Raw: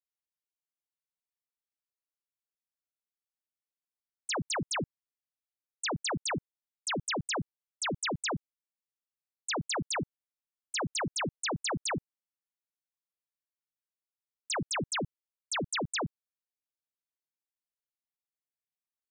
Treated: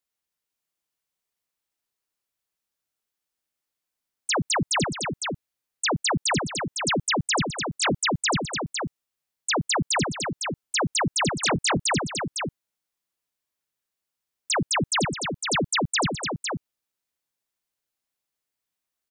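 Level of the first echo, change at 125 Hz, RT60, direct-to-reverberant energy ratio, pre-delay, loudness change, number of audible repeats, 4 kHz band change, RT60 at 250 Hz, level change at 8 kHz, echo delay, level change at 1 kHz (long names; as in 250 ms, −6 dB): −12.5 dB, +10.5 dB, no reverb audible, no reverb audible, no reverb audible, +8.5 dB, 2, +10.0 dB, no reverb audible, +10.0 dB, 209 ms, +10.0 dB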